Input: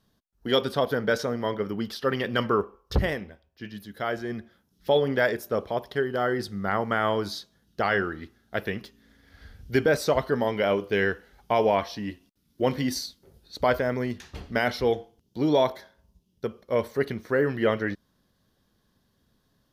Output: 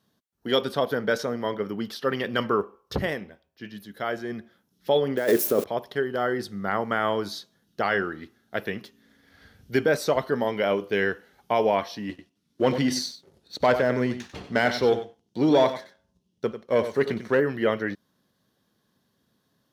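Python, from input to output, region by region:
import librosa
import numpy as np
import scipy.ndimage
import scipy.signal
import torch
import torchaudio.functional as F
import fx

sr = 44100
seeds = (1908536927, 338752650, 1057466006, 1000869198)

y = fx.chain(x, sr, fx.crossing_spikes(level_db=-26.0),
    fx.over_compress(threshold_db=-27.0, ratio=-1.0),
    fx.peak_eq(hz=340.0, db=10.0, octaves=1.6), at=(5.17, 5.64))
y = fx.chain(y, sr, fx.lowpass(hz=8800.0, slope=12),
    fx.leveller(passes=1),
    fx.echo_single(ms=95, db=-11.0), at=(12.09, 17.4))
y = scipy.signal.sosfilt(scipy.signal.butter(2, 130.0, 'highpass', fs=sr, output='sos'), y)
y = fx.notch(y, sr, hz=4900.0, q=29.0)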